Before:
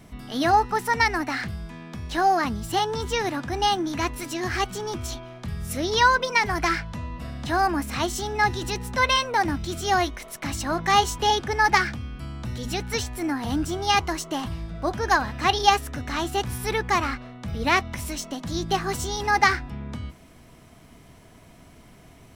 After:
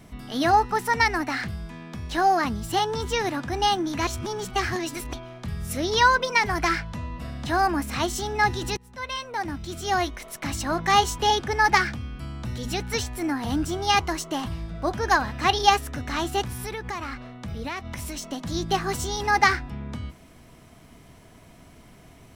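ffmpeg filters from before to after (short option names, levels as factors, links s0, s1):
-filter_complex "[0:a]asettb=1/sr,asplit=3[s0][s1][s2];[s0]atrim=end=16.444[s3];[s1]atrim=start=16.44:end=18.24,asetpts=PTS-STARTPTS,afade=t=in:d=0.004:c=qsin,afade=t=out:st=1.796:d=0.004:c=qsin,acompressor=threshold=0.0355:ratio=5:attack=3.2:release=140:knee=1:detection=peak[s4];[s2]atrim=start=18.236[s5];[s3][s4]acrossfade=d=0.004:c1=hsin:c2=qsin[s6];[s6][s5]acrossfade=d=0.004:c1=qsin:c2=hsin,asplit=4[s7][s8][s9][s10];[s7]atrim=end=4.072[s11];[s8]atrim=start=4.068:end=5.132,asetpts=PTS-STARTPTS,areverse[s12];[s9]atrim=start=5.128:end=8.77,asetpts=PTS-STARTPTS,afade=t=out:st=3.638:d=0.004:c=hsin:silence=0.0794328[s13];[s10]atrim=start=8.77,asetpts=PTS-STARTPTS,afade=t=in:d=1.57:silence=0.0794328[s14];[s11][s12]acrossfade=d=0.004:c1=hsin:c2=hsin[s15];[s13][s14]concat=n=2:v=0:a=1[s16];[s15][s16]acrossfade=d=0.004:c1=hsin:c2=hsin"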